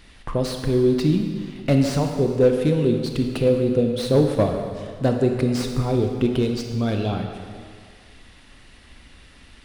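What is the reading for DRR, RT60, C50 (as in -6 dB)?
3.5 dB, 2.1 s, 4.5 dB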